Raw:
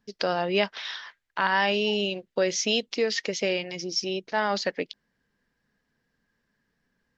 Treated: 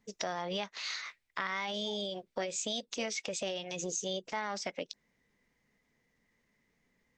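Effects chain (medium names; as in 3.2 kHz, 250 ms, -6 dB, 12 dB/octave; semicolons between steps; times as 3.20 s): transient shaper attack -4 dB, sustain 0 dB; compression 6:1, threshold -33 dBFS, peak gain reduction 13.5 dB; formant shift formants +3 st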